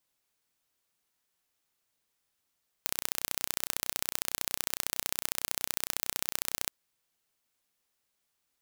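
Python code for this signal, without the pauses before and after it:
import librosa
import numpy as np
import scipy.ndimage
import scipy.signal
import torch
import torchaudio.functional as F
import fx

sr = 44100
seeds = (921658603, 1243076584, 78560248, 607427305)

y = fx.impulse_train(sr, length_s=3.85, per_s=30.9, accent_every=2, level_db=-1.5)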